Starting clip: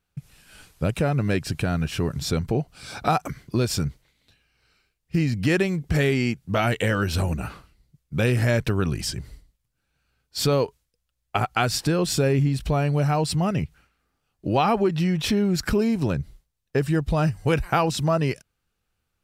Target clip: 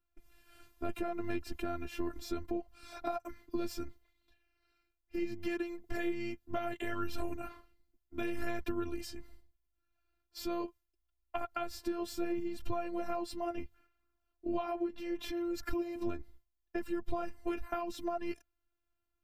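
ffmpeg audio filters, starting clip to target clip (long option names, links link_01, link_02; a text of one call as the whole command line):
ffmpeg -i in.wav -filter_complex "[0:a]flanger=delay=0.7:depth=9.3:regen=37:speed=0.71:shape=sinusoidal,afftfilt=real='hypot(re,im)*cos(PI*b)':imag='0':win_size=512:overlap=0.75,aexciter=amount=3.3:drive=4.3:freq=12000,acrossover=split=130[link_01][link_02];[link_02]acompressor=threshold=-32dB:ratio=6[link_03];[link_01][link_03]amix=inputs=2:normalize=0,highshelf=frequency=2500:gain=-11" out.wav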